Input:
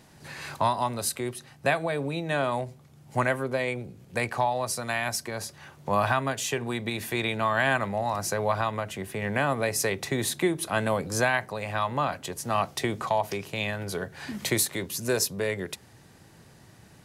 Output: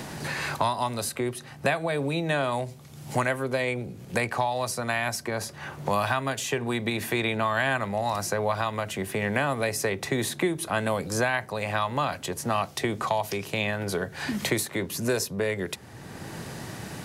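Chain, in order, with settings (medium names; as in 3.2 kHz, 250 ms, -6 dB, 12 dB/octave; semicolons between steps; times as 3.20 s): 8.49–9.14 s: crackle 160 per s -55 dBFS; three bands compressed up and down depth 70%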